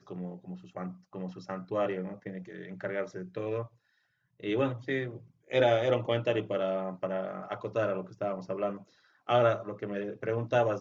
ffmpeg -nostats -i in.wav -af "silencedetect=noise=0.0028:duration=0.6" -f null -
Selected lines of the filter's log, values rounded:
silence_start: 3.68
silence_end: 4.40 | silence_duration: 0.72